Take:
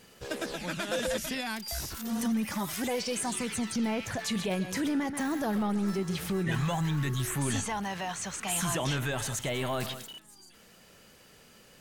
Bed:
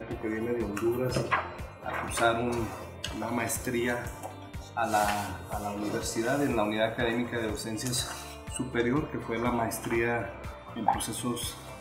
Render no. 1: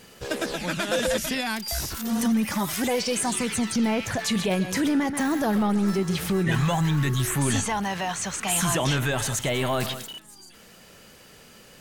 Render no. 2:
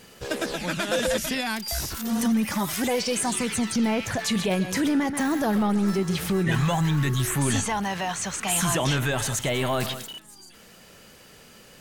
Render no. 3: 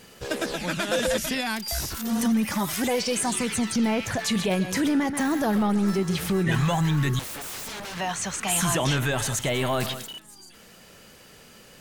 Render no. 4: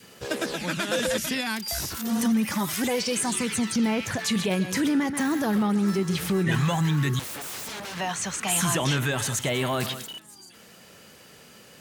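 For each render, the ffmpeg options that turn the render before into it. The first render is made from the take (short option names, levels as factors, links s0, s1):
-af "volume=2.11"
-af anull
-filter_complex "[0:a]asettb=1/sr,asplit=3[s0][s1][s2];[s0]atrim=end=7.194[s3];[s1]atrim=start=7.19:end=7.97,asetpts=PTS-STARTPTS,afade=t=in:d=0.004:c=qsin,afade=t=out:st=0.776:d=0.004:c=qsin,aeval=exprs='0.0282*(abs(mod(val(0)/0.0282+3,4)-2)-1)':c=same[s4];[s2]atrim=start=7.966[s5];[s3][s4]acrossfade=d=0.004:c1=hsin:c2=qsin[s6];[s6][s5]acrossfade=d=0.004:c1=qsin:c2=hsin"
-af "highpass=82,adynamicequalizer=threshold=0.00794:dfrequency=680:dqfactor=2:tfrequency=680:tqfactor=2:attack=5:release=100:ratio=0.375:range=2.5:mode=cutabove:tftype=bell"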